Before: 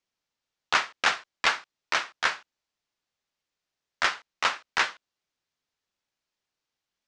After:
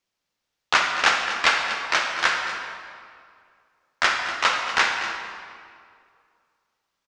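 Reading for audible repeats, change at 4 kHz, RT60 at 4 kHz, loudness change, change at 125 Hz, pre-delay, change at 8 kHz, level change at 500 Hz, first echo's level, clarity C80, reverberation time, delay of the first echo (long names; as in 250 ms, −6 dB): 1, +5.5 dB, 1.5 s, +5.5 dB, can't be measured, 32 ms, +5.5 dB, +6.0 dB, −13.0 dB, 4.0 dB, 2.2 s, 242 ms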